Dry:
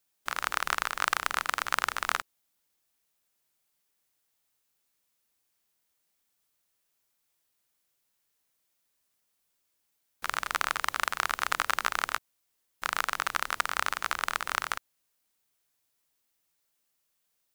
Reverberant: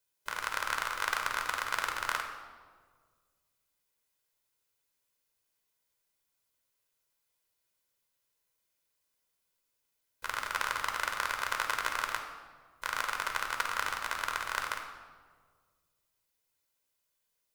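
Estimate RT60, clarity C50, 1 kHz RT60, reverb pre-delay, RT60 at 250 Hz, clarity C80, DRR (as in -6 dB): 1.7 s, 6.0 dB, 1.5 s, 10 ms, 1.9 s, 8.0 dB, 3.5 dB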